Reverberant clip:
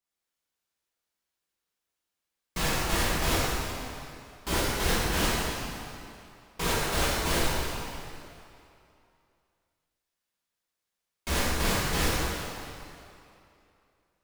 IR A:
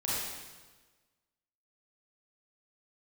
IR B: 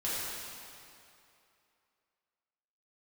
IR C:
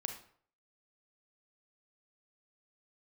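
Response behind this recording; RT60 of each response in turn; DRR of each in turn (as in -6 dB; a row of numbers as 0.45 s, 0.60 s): B; 1.3 s, 2.7 s, 0.55 s; -8.5 dB, -10.0 dB, 5.0 dB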